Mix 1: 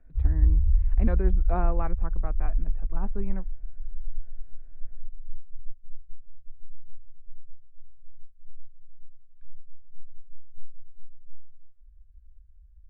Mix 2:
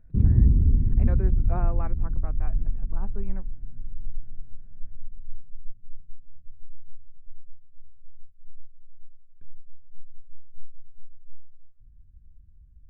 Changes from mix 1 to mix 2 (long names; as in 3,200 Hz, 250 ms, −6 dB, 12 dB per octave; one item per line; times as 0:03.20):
speech −4.0 dB
background: remove inverse Chebyshev band-stop filter 180–410 Hz, stop band 70 dB